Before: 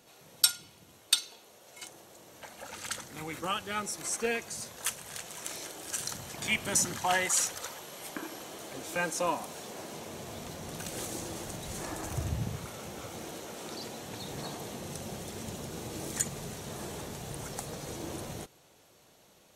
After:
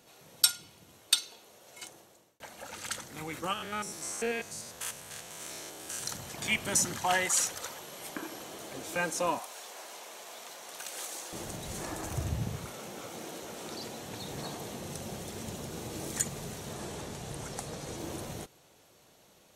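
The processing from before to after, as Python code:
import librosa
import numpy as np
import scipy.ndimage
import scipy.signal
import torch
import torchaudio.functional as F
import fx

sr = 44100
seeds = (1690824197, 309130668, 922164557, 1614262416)

y = fx.spec_steps(x, sr, hold_ms=100, at=(3.53, 6.03))
y = fx.highpass(y, sr, hz=710.0, slope=12, at=(9.39, 11.33))
y = fx.highpass(y, sr, hz=160.0, slope=12, at=(12.72, 13.42))
y = fx.lowpass(y, sr, hz=11000.0, slope=12, at=(16.73, 17.98))
y = fx.edit(y, sr, fx.fade_out_span(start_s=1.85, length_s=0.55), tone=tone)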